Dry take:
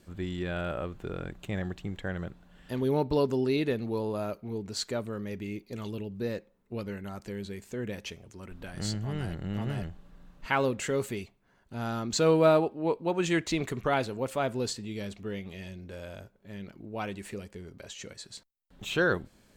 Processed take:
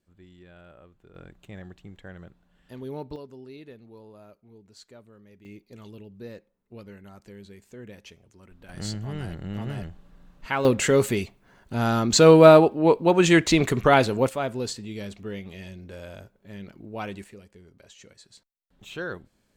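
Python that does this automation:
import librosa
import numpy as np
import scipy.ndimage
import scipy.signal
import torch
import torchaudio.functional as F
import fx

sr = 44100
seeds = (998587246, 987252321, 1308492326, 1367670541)

y = fx.gain(x, sr, db=fx.steps((0.0, -17.5), (1.15, -8.5), (3.16, -16.5), (5.45, -7.5), (8.69, 0.5), (10.65, 10.0), (14.29, 1.5), (17.24, -7.5)))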